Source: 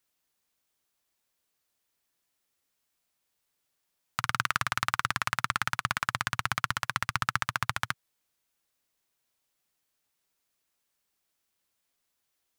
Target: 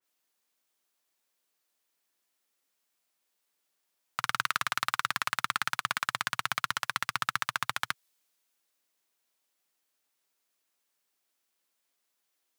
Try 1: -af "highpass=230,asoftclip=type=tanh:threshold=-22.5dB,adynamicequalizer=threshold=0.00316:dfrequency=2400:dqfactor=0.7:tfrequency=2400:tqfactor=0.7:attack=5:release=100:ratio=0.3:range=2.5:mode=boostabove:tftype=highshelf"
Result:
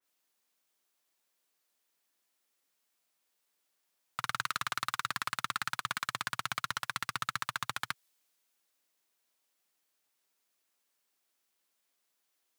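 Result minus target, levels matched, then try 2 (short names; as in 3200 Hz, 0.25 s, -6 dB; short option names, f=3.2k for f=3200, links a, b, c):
soft clip: distortion +9 dB
-af "highpass=230,asoftclip=type=tanh:threshold=-13dB,adynamicequalizer=threshold=0.00316:dfrequency=2400:dqfactor=0.7:tfrequency=2400:tqfactor=0.7:attack=5:release=100:ratio=0.3:range=2.5:mode=boostabove:tftype=highshelf"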